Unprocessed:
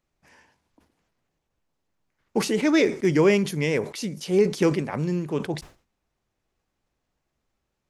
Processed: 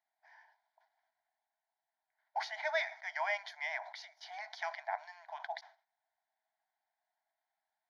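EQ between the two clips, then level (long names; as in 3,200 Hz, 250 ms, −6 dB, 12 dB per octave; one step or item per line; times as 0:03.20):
linear-phase brick-wall high-pass 620 Hz
head-to-tape spacing loss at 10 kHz 29 dB
phaser with its sweep stopped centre 1,800 Hz, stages 8
+1.5 dB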